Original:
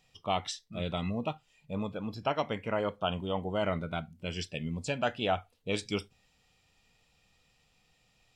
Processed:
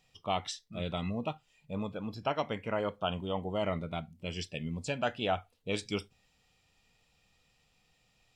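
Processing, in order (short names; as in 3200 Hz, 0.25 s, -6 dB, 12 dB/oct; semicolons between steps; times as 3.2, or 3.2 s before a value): 3.33–4.54 notch 1500 Hz, Q 6.5; gain -1.5 dB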